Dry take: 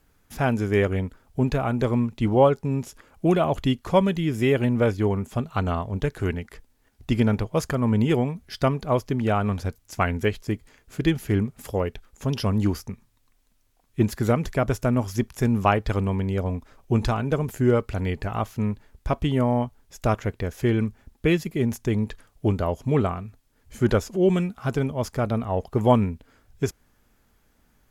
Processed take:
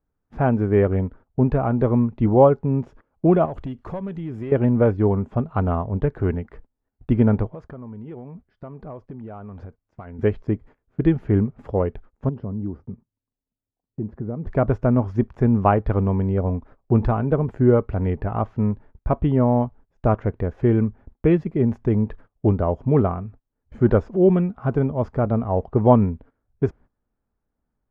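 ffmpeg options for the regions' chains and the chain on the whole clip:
ffmpeg -i in.wav -filter_complex "[0:a]asettb=1/sr,asplit=3[link_01][link_02][link_03];[link_01]atrim=end=3.454[link_04];[link_02]atrim=start=3.45:end=4.52,asetpts=PTS-STARTPTS,afade=type=in:duration=0.004:curve=qsin,afade=type=out:start_time=1.066:duration=0.004:curve=qsin,aemphasis=mode=production:type=75fm,acompressor=threshold=-31dB:ratio=4:attack=3.2:release=140:knee=1:detection=peak,aeval=exprs='clip(val(0),-1,0.0299)':channel_layout=same[link_05];[link_03]atrim=start=4.516[link_06];[link_04][link_05]acrossfade=duration=0.004:curve1=hsin:curve2=qsin[link_07];[link_07][link_06]acrossfade=duration=0.004:curve1=qsin:curve2=hsin,asettb=1/sr,asplit=3[link_08][link_09][link_10];[link_08]atrim=end=7.514[link_11];[link_09]atrim=start=7.51:end=10.19,asetpts=PTS-STARTPTS,afade=type=in:duration=0.004:curve=qsin,afade=type=out:start_time=2.676:duration=0.004:curve=qsin,acompressor=threshold=-34dB:ratio=16:attack=3.2:release=140:knee=1:detection=peak,lowshelf=frequency=190:gain=-3.5,volume=33dB,asoftclip=hard,volume=-33dB[link_12];[link_10]atrim=start=10.186[link_13];[link_11][link_12]acrossfade=duration=0.004:curve1=hsin:curve2=qsin[link_14];[link_14][link_13]acrossfade=duration=0.004:curve1=qsin:curve2=hsin,asettb=1/sr,asplit=3[link_15][link_16][link_17];[link_15]atrim=end=12.294[link_18];[link_16]atrim=start=12.29:end=14.47,asetpts=PTS-STARTPTS,afade=type=in:duration=0.004:curve=qsin,afade=type=out:start_time=2.176:duration=0.004:curve=qsin,acompressor=threshold=-31dB:ratio=2.5:attack=3.2:release=140:knee=1:detection=peak,bandpass=frequency=210:width_type=q:width=0.52[link_19];[link_17]atrim=start=14.466[link_20];[link_18][link_19]acrossfade=duration=0.004:curve1=hsin:curve2=qsin[link_21];[link_21][link_20]acrossfade=duration=0.004:curve1=qsin:curve2=hsin,lowpass=1100,agate=range=-18dB:threshold=-46dB:ratio=16:detection=peak,volume=4dB" out.wav

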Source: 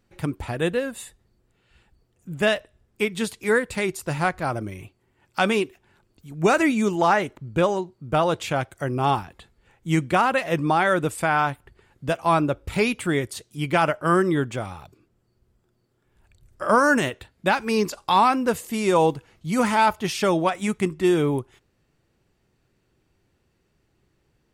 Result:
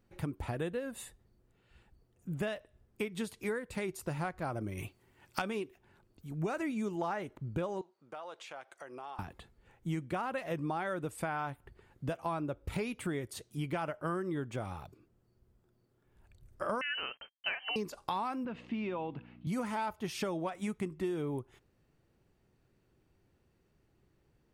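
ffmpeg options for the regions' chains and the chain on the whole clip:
ffmpeg -i in.wav -filter_complex "[0:a]asettb=1/sr,asplit=3[link_01][link_02][link_03];[link_01]atrim=end=4.774[link_04];[link_02]atrim=start=4.77:end=5.42,asetpts=PTS-STARTPTS,afade=type=in:duration=0.004:curve=qsin,afade=type=out:start_time=0.646:duration=0.004:curve=qsin,tiltshelf=frequency=1500:gain=-4.5,acontrast=69[link_05];[link_03]atrim=start=5.416[link_06];[link_04][link_05]acrossfade=duration=0.004:curve1=hsin:curve2=qsin[link_07];[link_07][link_06]acrossfade=duration=0.004:curve1=qsin:curve2=hsin,asettb=1/sr,asplit=3[link_08][link_09][link_10];[link_08]atrim=end=7.814[link_11];[link_09]atrim=start=7.81:end=9.19,asetpts=PTS-STARTPTS,afade=type=in:duration=0.004:curve=qsin,afade=type=out:start_time=1.376:duration=0.004:curve=qsin,highpass=640,lowpass=7900,acompressor=threshold=-40dB:ratio=4:attack=3.2:release=140:knee=1:detection=peak[link_12];[link_10]atrim=start=9.186[link_13];[link_11][link_12]acrossfade=duration=0.004:curve1=hsin:curve2=qsin[link_14];[link_14][link_13]acrossfade=duration=0.004:curve1=qsin:curve2=hsin,asettb=1/sr,asplit=3[link_15][link_16][link_17];[link_15]atrim=end=16.814[link_18];[link_16]atrim=start=16.81:end=17.76,asetpts=PTS-STARTPTS,afade=type=in:duration=0.004:curve=qsin,afade=type=out:start_time=0.946:duration=0.004:curve=qsin,asubboost=boost=7.5:cutoff=81,acrusher=bits=7:mix=0:aa=0.5,lowpass=frequency=2700:width_type=q:width=0.5098,lowpass=frequency=2700:width_type=q:width=0.6013,lowpass=frequency=2700:width_type=q:width=0.9,lowpass=frequency=2700:width_type=q:width=2.563,afreqshift=-3200[link_19];[link_17]atrim=start=17.756[link_20];[link_18][link_19]acrossfade=duration=0.004:curve1=hsin:curve2=qsin[link_21];[link_21][link_20]acrossfade=duration=0.004:curve1=qsin:curve2=hsin,asettb=1/sr,asplit=3[link_22][link_23][link_24];[link_22]atrim=end=18.454[link_25];[link_23]atrim=start=18.45:end=19.47,asetpts=PTS-STARTPTS,afade=type=in:duration=0.004:curve=qsin,afade=type=out:start_time=1.016:duration=0.004:curve=qsin,acompressor=threshold=-29dB:ratio=3:attack=3.2:release=140:knee=1:detection=peak,aeval=exprs='val(0)+0.00562*(sin(2*PI*60*n/s)+sin(2*PI*2*60*n/s)/2+sin(2*PI*3*60*n/s)/3+sin(2*PI*4*60*n/s)/4+sin(2*PI*5*60*n/s)/5)':channel_layout=same,highpass=160,equalizer=frequency=230:width_type=q:width=4:gain=5,equalizer=frequency=450:width_type=q:width=4:gain=-5,equalizer=frequency=2600:width_type=q:width=4:gain=6,lowpass=frequency=3500:width=0.5412,lowpass=frequency=3500:width=1.3066[link_26];[link_24]atrim=start=19.466[link_27];[link_25][link_26]acrossfade=duration=0.004:curve1=hsin:curve2=qsin[link_28];[link_28][link_27]acrossfade=duration=0.004:curve1=qsin:curve2=hsin,equalizer=frequency=4900:width=0.3:gain=-5,bandreject=frequency=7500:width=23,acompressor=threshold=-30dB:ratio=6,volume=-3dB" out.wav

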